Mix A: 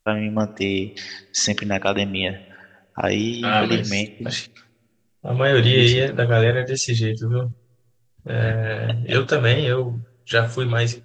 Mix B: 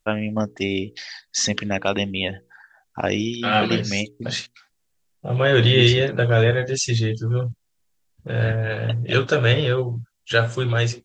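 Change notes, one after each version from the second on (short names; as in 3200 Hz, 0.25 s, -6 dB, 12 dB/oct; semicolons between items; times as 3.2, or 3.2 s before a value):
reverb: off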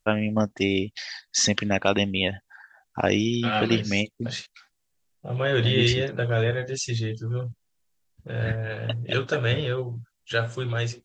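first voice: remove notches 60/120/180/240/300/360/420/480 Hz; second voice -6.5 dB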